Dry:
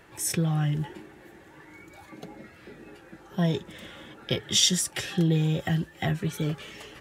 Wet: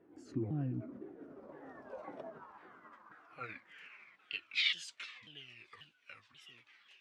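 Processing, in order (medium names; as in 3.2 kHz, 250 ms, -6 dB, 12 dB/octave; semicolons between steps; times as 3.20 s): sawtooth pitch modulation -8.5 st, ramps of 522 ms; Doppler pass-by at 1.80 s, 11 m/s, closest 5.4 m; band-pass sweep 320 Hz -> 3 kHz, 0.85–4.38 s; trim +9.5 dB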